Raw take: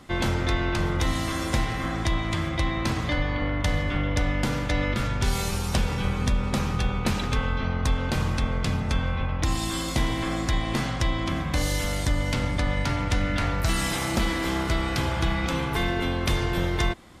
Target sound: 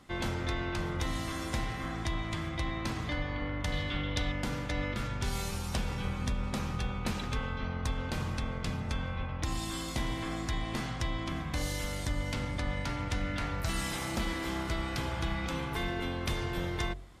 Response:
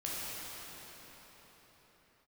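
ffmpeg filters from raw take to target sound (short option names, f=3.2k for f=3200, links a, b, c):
-filter_complex "[0:a]asettb=1/sr,asplit=3[a][b][c];[a]atrim=end=3.724[d];[b]atrim=start=3.72:end=4.32,asetpts=PTS-STARTPTS,afade=t=in:d=0.004:c=qsin,afade=t=out:st=0.596:d=0.004:c=qsin,equalizer=f=3.7k:w=1.8:g=11[e];[c]atrim=start=4.316[f];[d][e]acrossfade=d=0.004:c1=hsin:c2=qsin[g];[g][f]acrossfade=d=0.004:c1=qsin:c2=hsin,bandreject=f=45.77:t=h:w=4,bandreject=f=91.54:t=h:w=4,bandreject=f=137.31:t=h:w=4,bandreject=f=183.08:t=h:w=4,bandreject=f=228.85:t=h:w=4,bandreject=f=274.62:t=h:w=4,bandreject=f=320.39:t=h:w=4,bandreject=f=366.16:t=h:w=4,bandreject=f=411.93:t=h:w=4,bandreject=f=457.7:t=h:w=4,bandreject=f=503.47:t=h:w=4,bandreject=f=549.24:t=h:w=4,bandreject=f=595.01:t=h:w=4,bandreject=f=640.78:t=h:w=4,bandreject=f=686.55:t=h:w=4,bandreject=f=732.32:t=h:w=4,volume=-8dB"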